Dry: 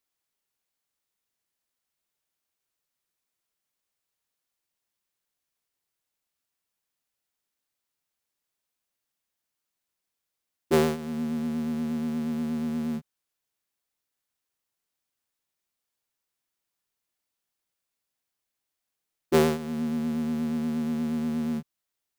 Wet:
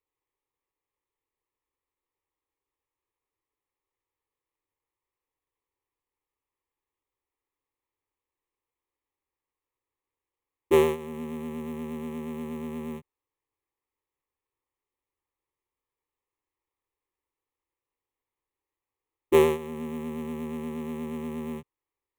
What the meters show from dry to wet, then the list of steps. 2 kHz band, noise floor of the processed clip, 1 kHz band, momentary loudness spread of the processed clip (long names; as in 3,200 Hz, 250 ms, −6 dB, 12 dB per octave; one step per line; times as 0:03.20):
−0.5 dB, below −85 dBFS, +0.5 dB, 14 LU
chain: running median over 15 samples
phaser with its sweep stopped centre 990 Hz, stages 8
level +4 dB